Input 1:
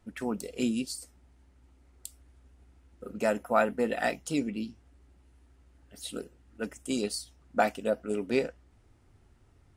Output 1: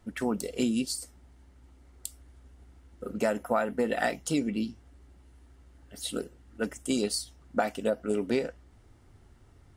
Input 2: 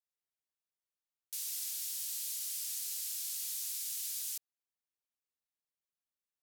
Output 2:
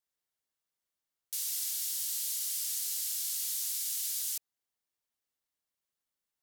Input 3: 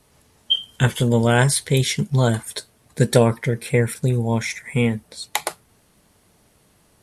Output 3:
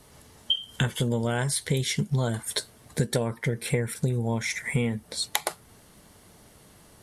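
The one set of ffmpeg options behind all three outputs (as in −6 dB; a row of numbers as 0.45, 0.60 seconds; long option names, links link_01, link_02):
-af "acompressor=threshold=-27dB:ratio=10,bandreject=frequency=2500:width=16,volume=4.5dB"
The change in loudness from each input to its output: +0.5, +4.5, −7.5 LU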